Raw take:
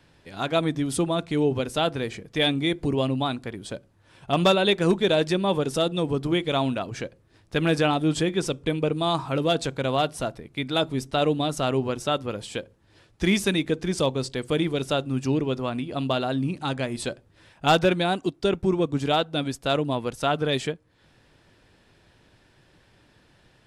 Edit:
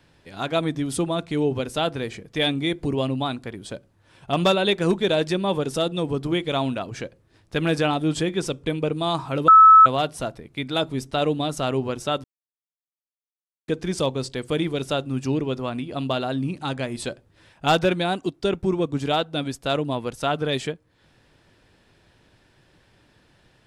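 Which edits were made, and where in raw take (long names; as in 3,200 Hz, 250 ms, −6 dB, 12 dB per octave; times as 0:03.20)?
0:09.48–0:09.86: beep over 1,300 Hz −6.5 dBFS
0:12.24–0:13.68: silence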